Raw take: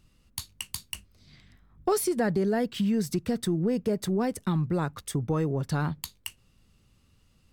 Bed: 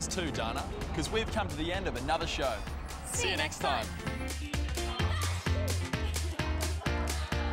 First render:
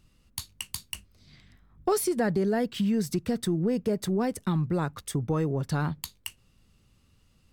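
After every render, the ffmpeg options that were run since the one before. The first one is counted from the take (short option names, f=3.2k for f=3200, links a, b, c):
-af anull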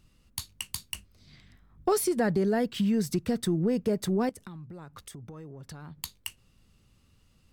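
-filter_complex "[0:a]asettb=1/sr,asplit=3[a][b][c];[a]atrim=end=4.294[d];[b]atrim=start=4.29:end=6.02,asetpts=PTS-STARTPTS,afade=t=in:d=0.004:c=qsin,afade=t=out:st=1.726:d=0.004:c=qsin,acompressor=threshold=-41dB:ratio=8:attack=3.2:release=140:knee=1:detection=peak[e];[c]atrim=start=6.016[f];[d][e]acrossfade=d=0.004:c1=hsin:c2=qsin[g];[g][f]acrossfade=d=0.004:c1=qsin:c2=hsin"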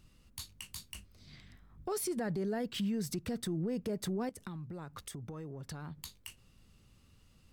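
-af "acompressor=threshold=-30dB:ratio=4,alimiter=level_in=4.5dB:limit=-24dB:level=0:latency=1:release=29,volume=-4.5dB"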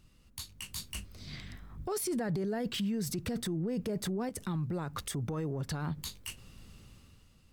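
-af "dynaudnorm=f=120:g=11:m=10.5dB,alimiter=level_in=3.5dB:limit=-24dB:level=0:latency=1:release=13,volume=-3.5dB"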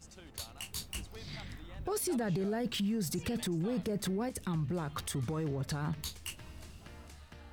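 -filter_complex "[1:a]volume=-20.5dB[a];[0:a][a]amix=inputs=2:normalize=0"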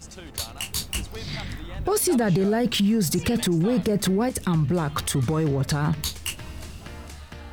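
-af "volume=12dB"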